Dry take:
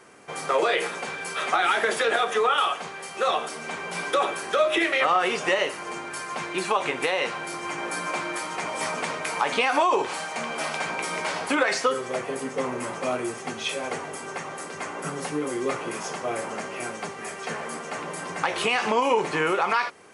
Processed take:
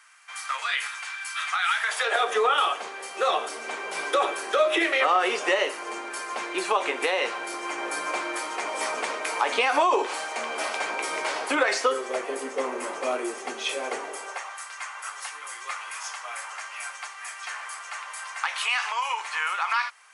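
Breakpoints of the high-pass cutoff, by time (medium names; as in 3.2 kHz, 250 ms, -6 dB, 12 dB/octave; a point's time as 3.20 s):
high-pass 24 dB/octave
1.78 s 1.2 kHz
2.32 s 300 Hz
14.06 s 300 Hz
14.59 s 1 kHz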